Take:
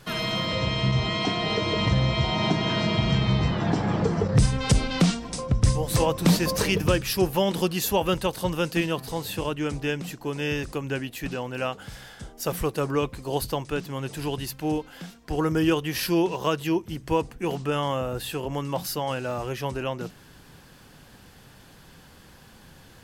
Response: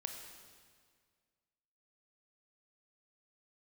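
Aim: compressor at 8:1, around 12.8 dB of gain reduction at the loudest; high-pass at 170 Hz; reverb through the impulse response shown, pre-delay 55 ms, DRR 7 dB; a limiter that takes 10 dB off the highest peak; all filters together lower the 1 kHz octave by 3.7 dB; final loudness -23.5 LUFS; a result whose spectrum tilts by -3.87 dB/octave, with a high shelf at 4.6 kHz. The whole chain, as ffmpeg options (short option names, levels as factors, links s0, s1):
-filter_complex "[0:a]highpass=170,equalizer=f=1000:t=o:g=-5,highshelf=f=4600:g=8.5,acompressor=threshold=0.0316:ratio=8,alimiter=level_in=1.12:limit=0.0631:level=0:latency=1,volume=0.891,asplit=2[s0][s1];[1:a]atrim=start_sample=2205,adelay=55[s2];[s1][s2]afir=irnorm=-1:irlink=0,volume=0.531[s3];[s0][s3]amix=inputs=2:normalize=0,volume=3.55"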